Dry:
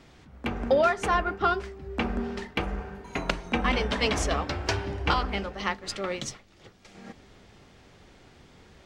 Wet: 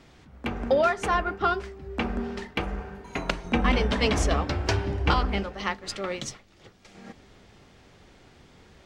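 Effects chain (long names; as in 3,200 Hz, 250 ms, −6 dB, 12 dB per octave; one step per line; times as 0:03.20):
0:03.44–0:05.43: low-shelf EQ 390 Hz +5.5 dB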